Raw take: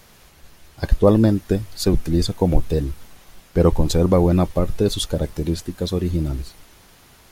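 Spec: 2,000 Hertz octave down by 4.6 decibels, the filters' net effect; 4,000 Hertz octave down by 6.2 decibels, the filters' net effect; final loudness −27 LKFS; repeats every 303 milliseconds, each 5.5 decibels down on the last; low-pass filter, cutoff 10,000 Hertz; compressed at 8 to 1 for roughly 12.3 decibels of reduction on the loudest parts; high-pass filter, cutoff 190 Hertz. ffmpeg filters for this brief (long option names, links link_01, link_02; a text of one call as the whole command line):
ffmpeg -i in.wav -af "highpass=190,lowpass=10000,equalizer=frequency=2000:width_type=o:gain=-5,equalizer=frequency=4000:width_type=o:gain=-6,acompressor=threshold=-24dB:ratio=8,aecho=1:1:303|606|909|1212|1515|1818|2121:0.531|0.281|0.149|0.079|0.0419|0.0222|0.0118,volume=3dB" out.wav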